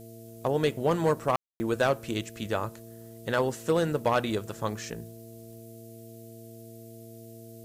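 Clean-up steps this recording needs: de-hum 114.4 Hz, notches 4; notch 660 Hz, Q 30; room tone fill 1.36–1.6; noise print and reduce 27 dB

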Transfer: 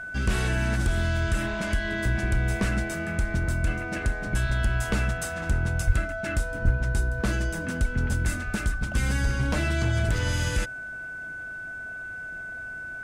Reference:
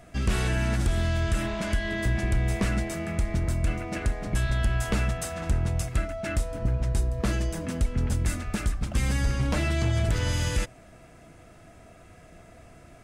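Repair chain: notch 1500 Hz, Q 30; de-plosive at 5.86/6.64

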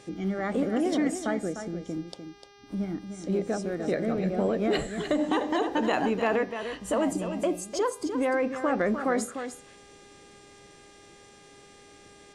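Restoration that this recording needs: clip repair -14.5 dBFS; de-hum 403.9 Hz, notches 15; inverse comb 0.3 s -9 dB

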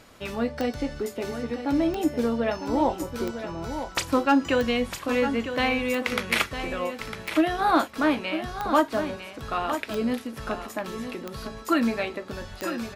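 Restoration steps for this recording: clip repair -11.5 dBFS; de-click; inverse comb 0.954 s -9.5 dB

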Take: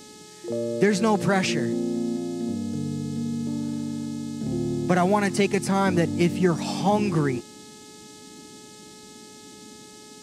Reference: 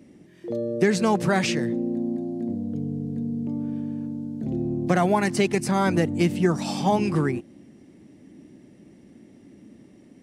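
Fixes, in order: de-hum 425.2 Hz, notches 32; noise print and reduce 6 dB

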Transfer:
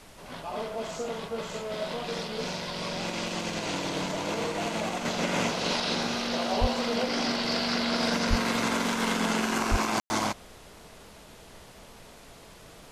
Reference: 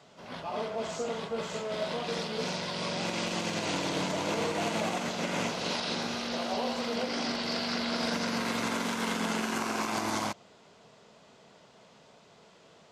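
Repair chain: 6.6–6.72 HPF 140 Hz 24 dB/oct; 8.29–8.41 HPF 140 Hz 24 dB/oct; 9.7–9.82 HPF 140 Hz 24 dB/oct; room tone fill 10–10.1; noise print and reduce 8 dB; gain 0 dB, from 5.05 s -4 dB

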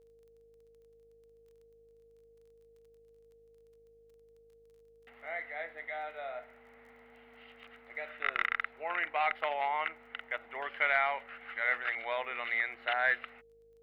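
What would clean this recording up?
de-click; de-hum 52.4 Hz, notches 15; notch 460 Hz, Q 30

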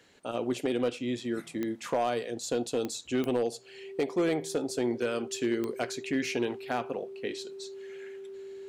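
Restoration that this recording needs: clip repair -20.5 dBFS; de-click; notch 390 Hz, Q 30

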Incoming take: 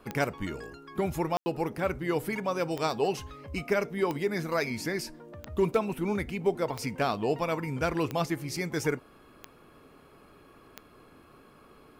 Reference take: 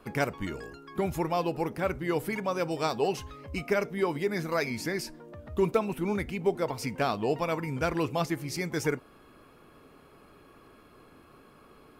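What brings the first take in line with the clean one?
clip repair -15.5 dBFS; de-click; room tone fill 1.37–1.46

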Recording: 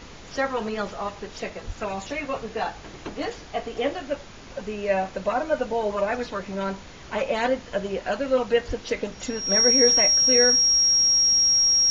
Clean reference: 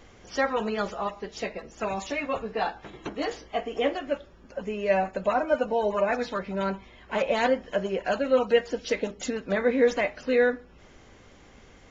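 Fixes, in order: notch 5600 Hz, Q 30; de-plosive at 1.66/8.67; noise print and reduce 10 dB

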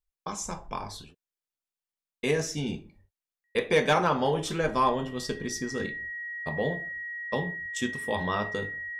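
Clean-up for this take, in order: clip repair -14.5 dBFS; notch 1900 Hz, Q 30

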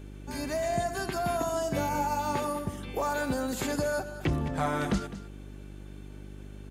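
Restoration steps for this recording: de-hum 49.8 Hz, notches 8; inverse comb 0.208 s -14 dB

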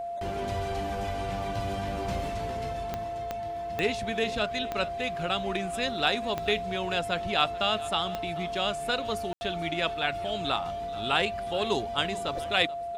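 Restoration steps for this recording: de-click; notch 690 Hz, Q 30; room tone fill 9.33–9.41; inverse comb 0.433 s -19 dB

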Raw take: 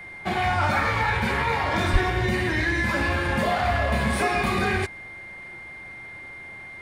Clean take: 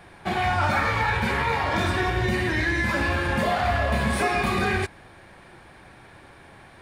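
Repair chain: notch 2100 Hz, Q 30; de-plosive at 1.92

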